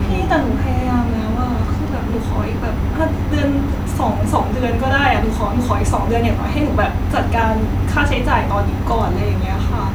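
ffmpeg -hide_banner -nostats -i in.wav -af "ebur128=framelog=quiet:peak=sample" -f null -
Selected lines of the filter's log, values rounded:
Integrated loudness:
  I:         -17.9 LUFS
  Threshold: -27.9 LUFS
Loudness range:
  LRA:         2.2 LU
  Threshold: -37.8 LUFS
  LRA low:   -19.3 LUFS
  LRA high:  -17.0 LUFS
Sample peak:
  Peak:       -1.6 dBFS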